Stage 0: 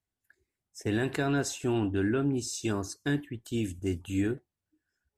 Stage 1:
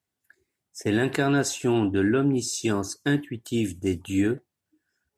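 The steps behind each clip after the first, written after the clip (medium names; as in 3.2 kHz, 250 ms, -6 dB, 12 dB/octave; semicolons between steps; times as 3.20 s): high-pass 110 Hz 12 dB/octave; trim +6 dB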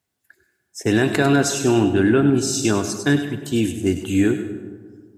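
feedback echo behind a high-pass 100 ms, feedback 37%, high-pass 3.1 kHz, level -6 dB; on a send at -10 dB: reverberation RT60 1.7 s, pre-delay 50 ms; on the sum: trim +5.5 dB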